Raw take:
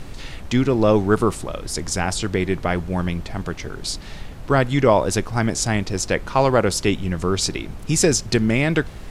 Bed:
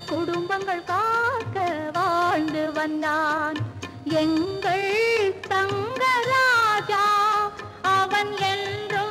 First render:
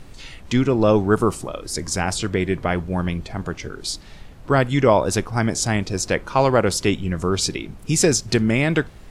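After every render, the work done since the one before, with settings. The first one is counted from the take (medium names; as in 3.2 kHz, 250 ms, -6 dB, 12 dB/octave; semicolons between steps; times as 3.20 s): noise print and reduce 7 dB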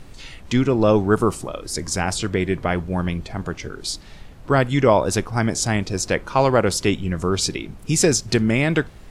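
no audible change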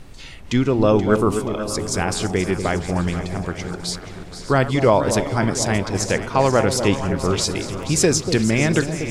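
backward echo that repeats 419 ms, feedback 62%, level -14 dB; echo whose repeats swap between lows and highs 239 ms, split 850 Hz, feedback 67%, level -8 dB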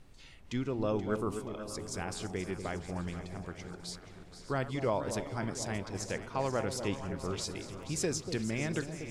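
trim -16 dB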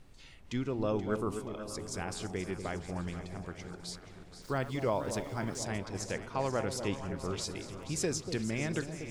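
4.42–5.63 s: small samples zeroed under -51 dBFS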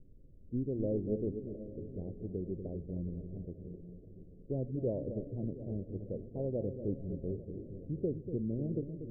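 local Wiener filter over 41 samples; steep low-pass 570 Hz 48 dB/octave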